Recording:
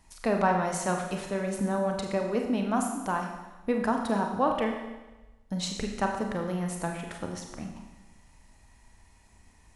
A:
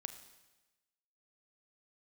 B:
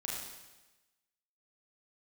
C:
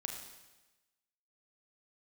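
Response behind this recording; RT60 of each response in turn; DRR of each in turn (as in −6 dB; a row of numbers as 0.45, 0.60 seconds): C; 1.1, 1.1, 1.1 seconds; 8.5, −4.5, 2.0 decibels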